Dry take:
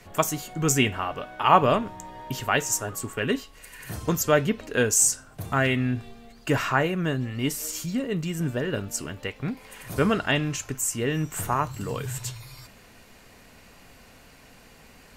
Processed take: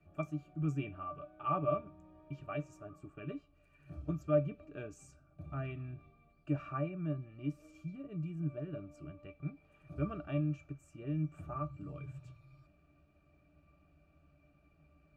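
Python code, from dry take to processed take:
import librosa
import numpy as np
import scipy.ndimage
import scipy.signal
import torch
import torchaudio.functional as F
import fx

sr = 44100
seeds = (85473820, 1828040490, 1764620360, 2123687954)

y = fx.octave_resonator(x, sr, note='D', decay_s=0.11)
y = y * librosa.db_to_amplitude(-5.0)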